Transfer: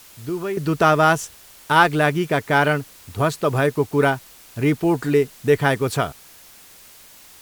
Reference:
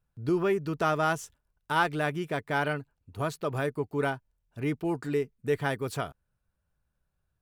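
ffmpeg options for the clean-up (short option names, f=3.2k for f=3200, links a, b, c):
-af "afwtdn=0.005,asetnsamples=n=441:p=0,asendcmd='0.57 volume volume -11dB',volume=0dB"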